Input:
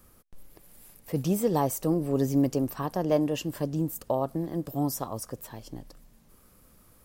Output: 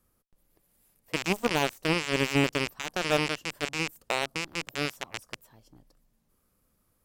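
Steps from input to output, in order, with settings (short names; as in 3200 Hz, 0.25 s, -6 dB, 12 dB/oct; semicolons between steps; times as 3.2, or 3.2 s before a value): rattling part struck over -33 dBFS, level -17 dBFS; added harmonics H 6 -35 dB, 7 -15 dB, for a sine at -10 dBFS; gain -1 dB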